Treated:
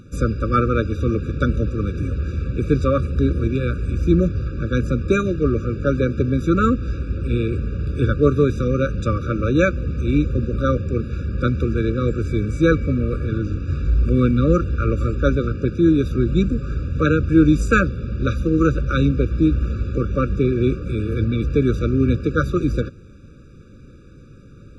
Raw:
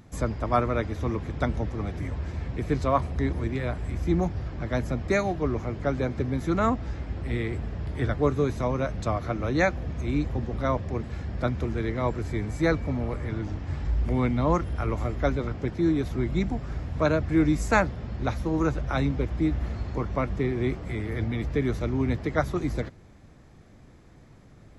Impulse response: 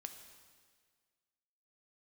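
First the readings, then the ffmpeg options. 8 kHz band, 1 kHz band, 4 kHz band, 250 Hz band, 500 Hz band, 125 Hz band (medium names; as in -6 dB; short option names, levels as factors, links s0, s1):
no reading, +2.5 dB, +5.5 dB, +8.5 dB, +7.0 dB, +8.5 dB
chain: -af "highshelf=f=9600:g=-10.5,afftfilt=real='re*eq(mod(floor(b*sr/1024/570),2),0)':imag='im*eq(mod(floor(b*sr/1024/570),2),0)':win_size=1024:overlap=0.75,volume=2.66"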